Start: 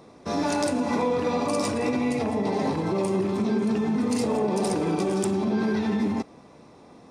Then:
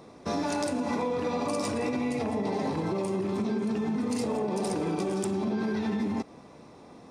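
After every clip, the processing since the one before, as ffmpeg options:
-af "acompressor=threshold=0.0501:ratio=6"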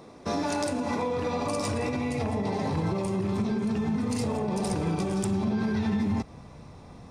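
-af "asubboost=boost=8:cutoff=110,volume=1.19"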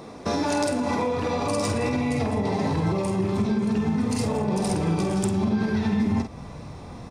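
-filter_complex "[0:a]asplit=2[s0][s1];[s1]adelay=48,volume=0.422[s2];[s0][s2]amix=inputs=2:normalize=0,asplit=2[s3][s4];[s4]acompressor=threshold=0.02:ratio=6,volume=1.26[s5];[s3][s5]amix=inputs=2:normalize=0"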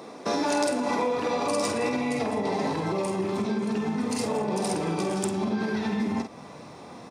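-af "highpass=250"

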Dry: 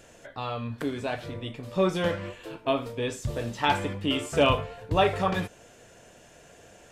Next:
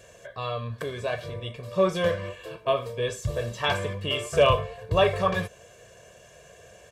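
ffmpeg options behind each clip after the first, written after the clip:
-af "highpass=45,aecho=1:1:1.8:0.82,volume=0.891"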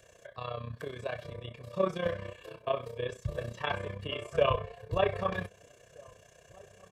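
-filter_complex "[0:a]acrossover=split=360|480|3400[s0][s1][s2][s3];[s3]acompressor=threshold=0.00282:ratio=6[s4];[s0][s1][s2][s4]amix=inputs=4:normalize=0,tremolo=f=31:d=0.75,asplit=2[s5][s6];[s6]adelay=1574,volume=0.0562,highshelf=f=4000:g=-35.4[s7];[s5][s7]amix=inputs=2:normalize=0,volume=0.631"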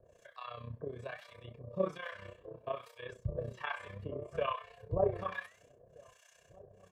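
-filter_complex "[0:a]acrossover=split=2500[s0][s1];[s1]acompressor=threshold=0.002:ratio=4:attack=1:release=60[s2];[s0][s2]amix=inputs=2:normalize=0,acrossover=split=840[s3][s4];[s3]aeval=exprs='val(0)*(1-1/2+1/2*cos(2*PI*1.2*n/s))':c=same[s5];[s4]aeval=exprs='val(0)*(1-1/2-1/2*cos(2*PI*1.2*n/s))':c=same[s6];[s5][s6]amix=inputs=2:normalize=0,flanger=delay=2.1:depth=9.2:regen=86:speed=0.65:shape=triangular,volume=1.58"

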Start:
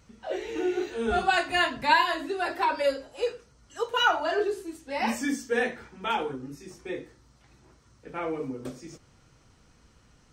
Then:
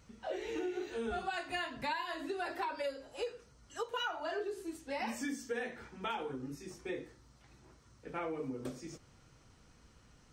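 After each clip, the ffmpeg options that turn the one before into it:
-af "acompressor=threshold=0.0251:ratio=6,volume=0.708"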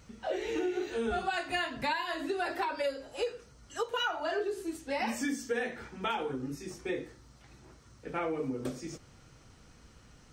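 -af "equalizer=f=1000:w=6.5:g=-2.5,volume=1.88"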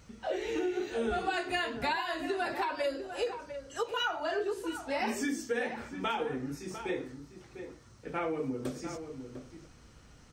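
-filter_complex "[0:a]asplit=2[s0][s1];[s1]adelay=699.7,volume=0.355,highshelf=f=4000:g=-15.7[s2];[s0][s2]amix=inputs=2:normalize=0"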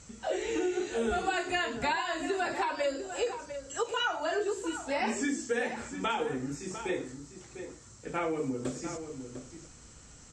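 -filter_complex "[0:a]acrossover=split=4000[s0][s1];[s1]acompressor=threshold=0.00141:ratio=4:attack=1:release=60[s2];[s0][s2]amix=inputs=2:normalize=0,lowpass=f=7500:t=q:w=9.2,volume=1.19"

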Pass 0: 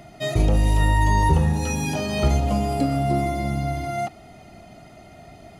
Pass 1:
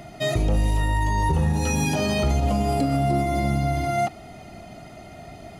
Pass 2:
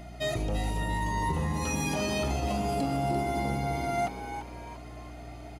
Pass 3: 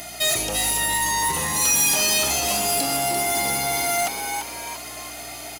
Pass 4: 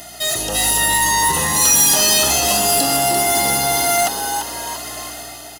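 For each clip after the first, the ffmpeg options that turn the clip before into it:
-af "alimiter=limit=0.141:level=0:latency=1:release=80,volume=1.5"
-filter_complex "[0:a]lowshelf=f=220:g=-5.5,aeval=exprs='val(0)+0.0126*(sin(2*PI*60*n/s)+sin(2*PI*2*60*n/s)/2+sin(2*PI*3*60*n/s)/3+sin(2*PI*4*60*n/s)/4+sin(2*PI*5*60*n/s)/5)':c=same,asplit=2[s0][s1];[s1]asplit=4[s2][s3][s4][s5];[s2]adelay=342,afreqshift=120,volume=0.335[s6];[s3]adelay=684,afreqshift=240,volume=0.124[s7];[s4]adelay=1026,afreqshift=360,volume=0.0457[s8];[s5]adelay=1368,afreqshift=480,volume=0.017[s9];[s6][s7][s8][s9]amix=inputs=4:normalize=0[s10];[s0][s10]amix=inputs=2:normalize=0,volume=0.531"
-filter_complex "[0:a]aemphasis=mode=production:type=75fm,asplit=2[s0][s1];[s1]highpass=f=720:p=1,volume=7.94,asoftclip=type=tanh:threshold=0.188[s2];[s0][s2]amix=inputs=2:normalize=0,lowpass=f=2200:p=1,volume=0.501,crystalizer=i=5:c=0,volume=0.794"
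-af "dynaudnorm=f=110:g=9:m=2.11,asuperstop=centerf=2300:order=12:qfactor=5.5"

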